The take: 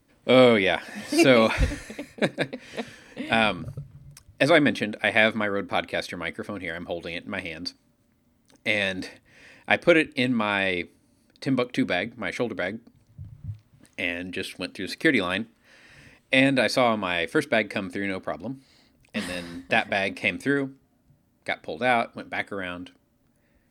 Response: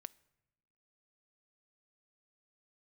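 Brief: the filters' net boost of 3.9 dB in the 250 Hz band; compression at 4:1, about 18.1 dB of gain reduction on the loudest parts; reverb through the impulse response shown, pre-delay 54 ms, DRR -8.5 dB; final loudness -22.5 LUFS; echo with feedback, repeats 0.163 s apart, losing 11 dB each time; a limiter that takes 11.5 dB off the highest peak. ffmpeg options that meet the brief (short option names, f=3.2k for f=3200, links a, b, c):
-filter_complex "[0:a]equalizer=f=250:t=o:g=4.5,acompressor=threshold=-33dB:ratio=4,alimiter=limit=-24dB:level=0:latency=1,aecho=1:1:163|326|489:0.282|0.0789|0.0221,asplit=2[a][b];[1:a]atrim=start_sample=2205,adelay=54[c];[b][c]afir=irnorm=-1:irlink=0,volume=14dB[d];[a][d]amix=inputs=2:normalize=0,volume=6dB"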